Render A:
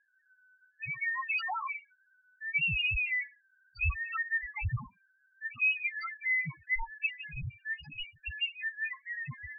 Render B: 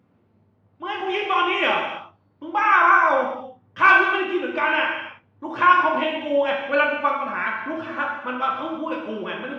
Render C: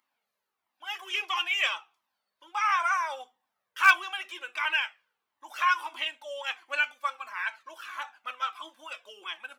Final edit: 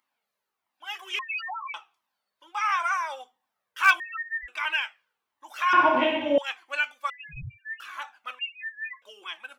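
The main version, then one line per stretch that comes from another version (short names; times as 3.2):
C
1.19–1.74 from A
4–4.48 from A
5.73–6.38 from B
7.1–7.8 from A
8.39–9.02 from A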